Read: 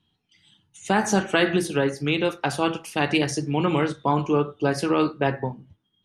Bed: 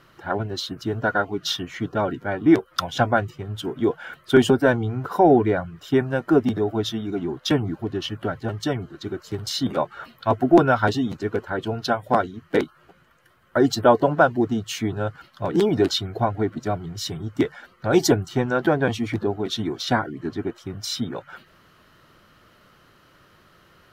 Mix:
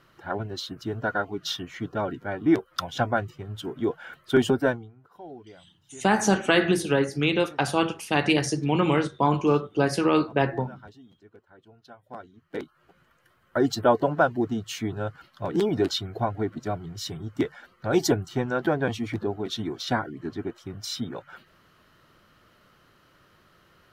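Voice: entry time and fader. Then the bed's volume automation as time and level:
5.15 s, 0.0 dB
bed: 4.68 s -5 dB
4.95 s -27.5 dB
11.84 s -27.5 dB
13.01 s -4.5 dB

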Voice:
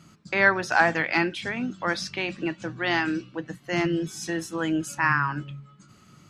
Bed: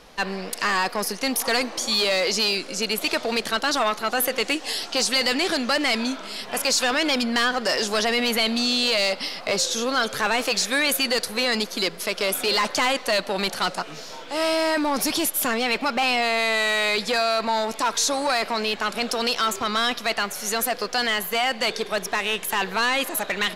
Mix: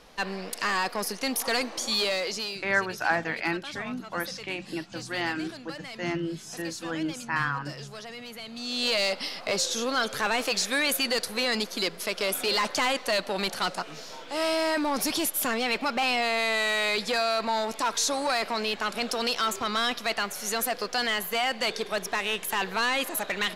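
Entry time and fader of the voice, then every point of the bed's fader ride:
2.30 s, -5.5 dB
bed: 2.04 s -4.5 dB
2.93 s -19 dB
8.47 s -19 dB
8.87 s -4 dB

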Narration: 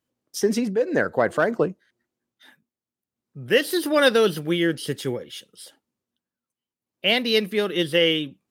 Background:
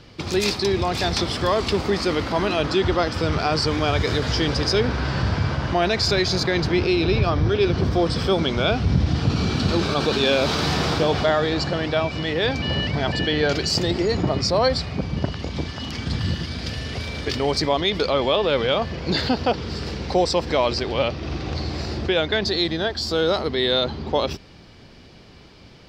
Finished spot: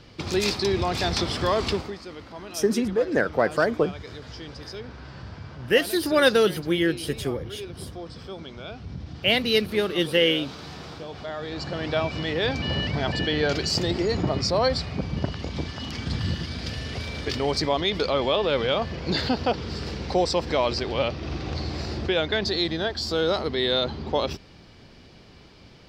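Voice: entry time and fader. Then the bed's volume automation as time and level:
2.20 s, -1.0 dB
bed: 1.71 s -2.5 dB
1.99 s -17.5 dB
11.13 s -17.5 dB
11.95 s -3 dB

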